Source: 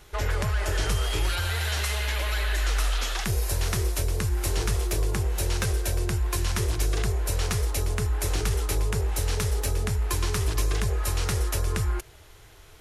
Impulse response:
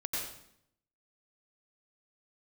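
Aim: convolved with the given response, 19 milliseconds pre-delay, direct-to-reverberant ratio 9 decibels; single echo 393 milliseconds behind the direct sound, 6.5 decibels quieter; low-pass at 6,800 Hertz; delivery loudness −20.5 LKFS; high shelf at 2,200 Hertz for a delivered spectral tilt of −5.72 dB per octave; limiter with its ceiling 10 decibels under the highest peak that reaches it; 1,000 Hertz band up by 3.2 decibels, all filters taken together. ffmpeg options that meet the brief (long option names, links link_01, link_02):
-filter_complex "[0:a]lowpass=6800,equalizer=frequency=1000:width_type=o:gain=6,highshelf=frequency=2200:gain=-8.5,alimiter=level_in=0.5dB:limit=-24dB:level=0:latency=1,volume=-0.5dB,aecho=1:1:393:0.473,asplit=2[link_01][link_02];[1:a]atrim=start_sample=2205,adelay=19[link_03];[link_02][link_03]afir=irnorm=-1:irlink=0,volume=-13dB[link_04];[link_01][link_04]amix=inputs=2:normalize=0,volume=11.5dB"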